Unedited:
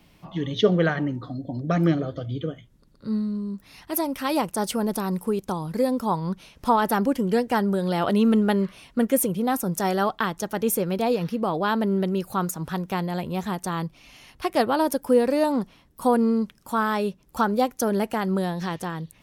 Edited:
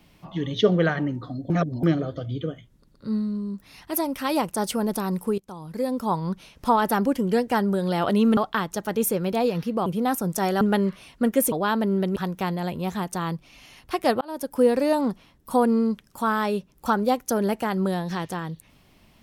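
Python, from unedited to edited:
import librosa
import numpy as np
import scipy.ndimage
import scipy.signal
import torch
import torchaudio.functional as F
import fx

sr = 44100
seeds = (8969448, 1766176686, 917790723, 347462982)

y = fx.edit(x, sr, fx.reverse_span(start_s=1.5, length_s=0.33),
    fx.fade_in_from(start_s=5.38, length_s=0.75, floor_db=-19.5),
    fx.swap(start_s=8.37, length_s=0.91, other_s=10.03, other_length_s=1.49),
    fx.cut(start_s=12.16, length_s=0.51),
    fx.fade_in_span(start_s=14.72, length_s=0.41), tone=tone)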